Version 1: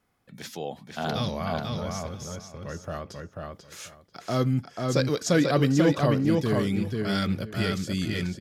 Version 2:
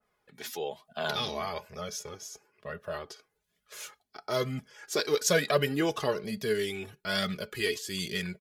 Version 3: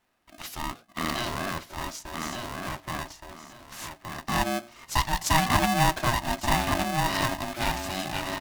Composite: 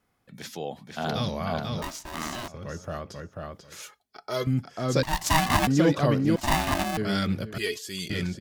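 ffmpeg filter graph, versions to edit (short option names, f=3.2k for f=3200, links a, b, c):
-filter_complex "[2:a]asplit=3[a][b][c];[1:a]asplit=2[d][e];[0:a]asplit=6[f][g][h][i][j][k];[f]atrim=end=1.822[l];[a]atrim=start=1.818:end=2.482[m];[g]atrim=start=2.478:end=3.822[n];[d]atrim=start=3.818:end=4.472[o];[h]atrim=start=4.468:end=5.032[p];[b]atrim=start=5.028:end=5.672[q];[i]atrim=start=5.668:end=6.362[r];[c]atrim=start=6.358:end=6.972[s];[j]atrim=start=6.968:end=7.582[t];[e]atrim=start=7.578:end=8.102[u];[k]atrim=start=8.098[v];[l][m]acrossfade=d=0.004:c1=hsin:c2=hsin[w];[w][n]acrossfade=d=0.004:c1=hsin:c2=hsin[x];[x][o]acrossfade=d=0.004:c1=hsin:c2=hsin[y];[y][p]acrossfade=d=0.004:c1=hsin:c2=hsin[z];[z][q]acrossfade=d=0.004:c1=hsin:c2=hsin[aa];[aa][r]acrossfade=d=0.004:c1=hsin:c2=hsin[ab];[ab][s]acrossfade=d=0.004:c1=hsin:c2=hsin[ac];[ac][t]acrossfade=d=0.004:c1=hsin:c2=hsin[ad];[ad][u]acrossfade=d=0.004:c1=hsin:c2=hsin[ae];[ae][v]acrossfade=d=0.004:c1=hsin:c2=hsin"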